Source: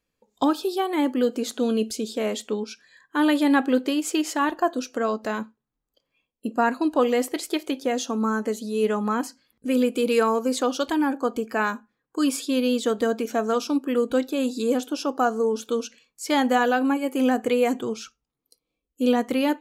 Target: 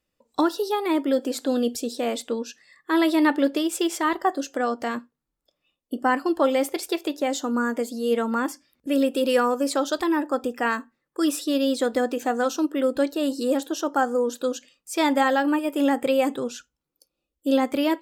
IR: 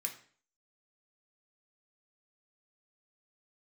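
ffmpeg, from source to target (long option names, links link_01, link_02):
-af "asetrate=48000,aresample=44100"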